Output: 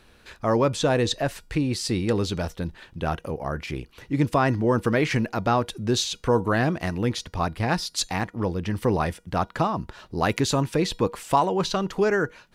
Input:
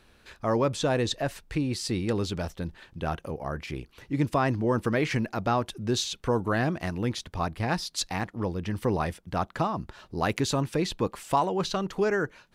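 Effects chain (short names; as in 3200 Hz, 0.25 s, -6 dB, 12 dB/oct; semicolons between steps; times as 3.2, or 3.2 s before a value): resonator 480 Hz, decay 0.3 s, harmonics all, mix 40%; gain +8 dB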